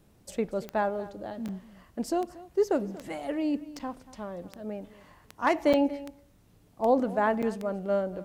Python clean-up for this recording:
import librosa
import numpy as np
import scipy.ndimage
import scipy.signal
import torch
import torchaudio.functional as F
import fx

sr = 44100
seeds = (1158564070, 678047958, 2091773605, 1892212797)

y = fx.fix_declick_ar(x, sr, threshold=10.0)
y = fx.fix_interpolate(y, sr, at_s=(1.48, 3.79, 5.73, 7.42), length_ms=6.7)
y = fx.fix_echo_inverse(y, sr, delay_ms=234, level_db=-18.5)